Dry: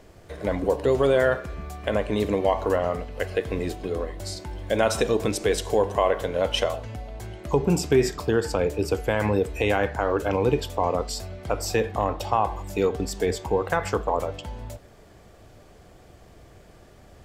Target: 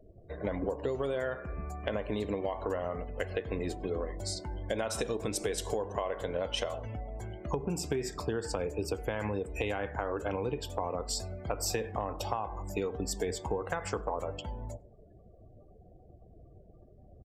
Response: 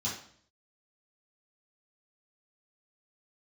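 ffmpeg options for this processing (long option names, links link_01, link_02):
-filter_complex "[0:a]afftdn=noise_reduction=34:noise_floor=-46,acompressor=threshold=-25dB:ratio=20,asplit=2[link_01][link_02];[link_02]adelay=98,lowpass=frequency=1300:poles=1,volume=-23dB,asplit=2[link_03][link_04];[link_04]adelay=98,lowpass=frequency=1300:poles=1,volume=0.41,asplit=2[link_05][link_06];[link_06]adelay=98,lowpass=frequency=1300:poles=1,volume=0.41[link_07];[link_01][link_03][link_05][link_07]amix=inputs=4:normalize=0,adynamicequalizer=threshold=0.00316:dfrequency=5400:dqfactor=0.7:tfrequency=5400:tqfactor=0.7:attack=5:release=100:ratio=0.375:range=2.5:mode=boostabove:tftype=highshelf,volume=-3.5dB"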